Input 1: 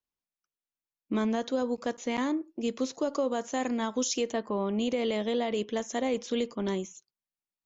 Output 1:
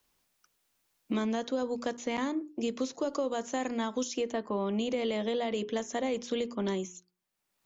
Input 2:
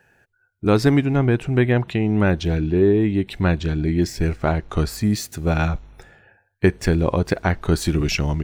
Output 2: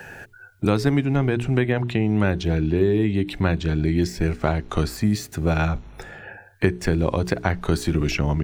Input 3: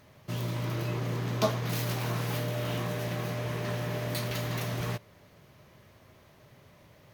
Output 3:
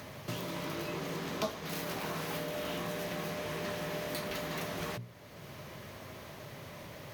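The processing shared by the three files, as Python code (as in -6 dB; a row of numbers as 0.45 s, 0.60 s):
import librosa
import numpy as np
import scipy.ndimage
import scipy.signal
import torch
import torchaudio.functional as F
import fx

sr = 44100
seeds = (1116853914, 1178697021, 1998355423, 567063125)

y = fx.hum_notches(x, sr, base_hz=60, count=7)
y = fx.band_squash(y, sr, depth_pct=70)
y = y * librosa.db_to_amplitude(-2.0)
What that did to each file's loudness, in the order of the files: -2.0 LU, -2.0 LU, -6.0 LU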